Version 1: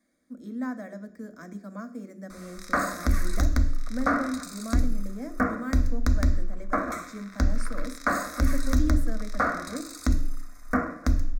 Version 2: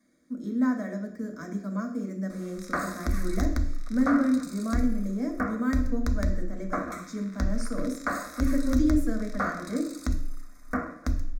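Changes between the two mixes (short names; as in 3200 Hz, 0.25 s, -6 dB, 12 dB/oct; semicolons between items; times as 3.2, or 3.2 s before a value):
speech: send +9.5 dB; background -4.5 dB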